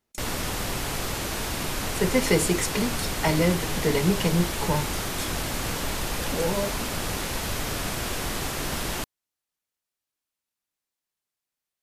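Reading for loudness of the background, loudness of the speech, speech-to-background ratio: −29.0 LKFS, −26.0 LKFS, 3.0 dB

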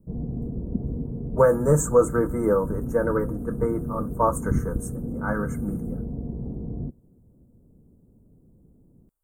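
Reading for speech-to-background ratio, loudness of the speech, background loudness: 7.5 dB, −24.5 LKFS, −32.0 LKFS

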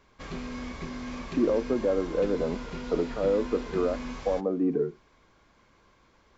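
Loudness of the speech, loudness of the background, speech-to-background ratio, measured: −28.5 LKFS, −38.5 LKFS, 10.0 dB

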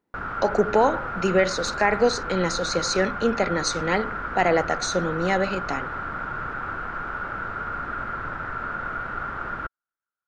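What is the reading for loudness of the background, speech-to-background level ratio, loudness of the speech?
−30.5 LKFS, 6.5 dB, −24.0 LKFS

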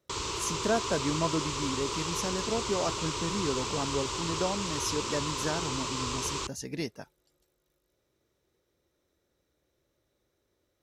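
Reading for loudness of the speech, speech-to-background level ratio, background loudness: −34.0 LKFS, −1.0 dB, −33.0 LKFS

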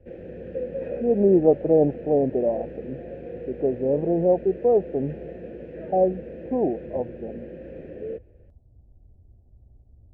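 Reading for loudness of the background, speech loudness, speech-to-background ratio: −37.0 LKFS, −23.0 LKFS, 14.0 dB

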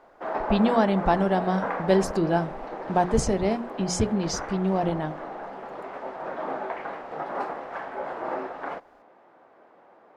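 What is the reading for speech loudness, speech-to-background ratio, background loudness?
−25.0 LKFS, 8.5 dB, −33.5 LKFS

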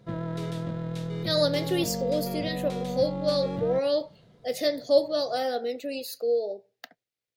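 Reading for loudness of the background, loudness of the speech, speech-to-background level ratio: −33.0 LKFS, −28.0 LKFS, 5.0 dB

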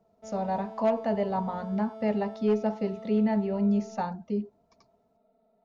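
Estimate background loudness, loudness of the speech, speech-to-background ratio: −44.0 LKFS, −29.0 LKFS, 15.0 dB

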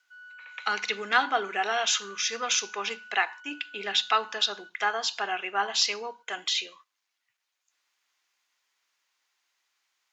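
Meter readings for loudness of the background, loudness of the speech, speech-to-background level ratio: −47.0 LKFS, −27.5 LKFS, 19.5 dB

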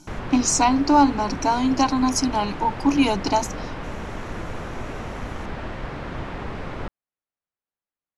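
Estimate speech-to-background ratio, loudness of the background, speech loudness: 13.0 dB, −33.5 LKFS, −20.5 LKFS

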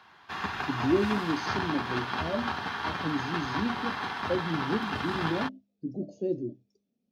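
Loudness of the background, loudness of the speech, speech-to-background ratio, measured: −33.0 LKFS, −33.0 LKFS, 0.0 dB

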